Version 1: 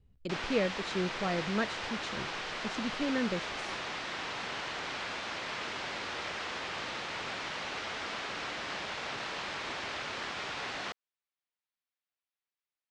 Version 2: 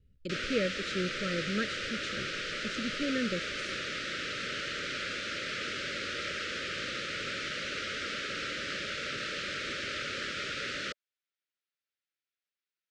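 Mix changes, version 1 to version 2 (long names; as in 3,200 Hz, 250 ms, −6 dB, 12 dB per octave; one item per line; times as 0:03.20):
background +3.5 dB
master: add elliptic band-stop filter 580–1,300 Hz, stop band 40 dB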